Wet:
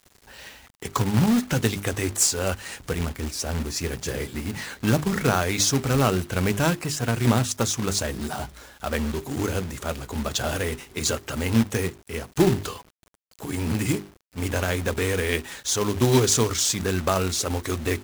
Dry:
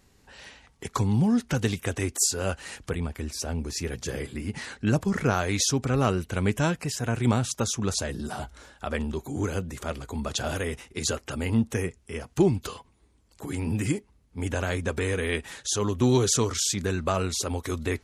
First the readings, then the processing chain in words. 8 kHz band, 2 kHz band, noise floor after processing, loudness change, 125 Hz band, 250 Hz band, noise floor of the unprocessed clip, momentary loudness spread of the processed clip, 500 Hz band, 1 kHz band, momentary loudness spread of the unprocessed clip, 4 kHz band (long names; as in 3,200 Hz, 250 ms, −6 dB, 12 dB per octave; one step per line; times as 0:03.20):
+3.5 dB, +4.0 dB, −58 dBFS, +3.0 dB, +2.5 dB, +2.5 dB, −62 dBFS, 11 LU, +3.0 dB, +3.5 dB, 11 LU, +4.0 dB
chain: mains-hum notches 50/100/150/200/250/300/350/400 Hz
log-companded quantiser 4 bits
level +3 dB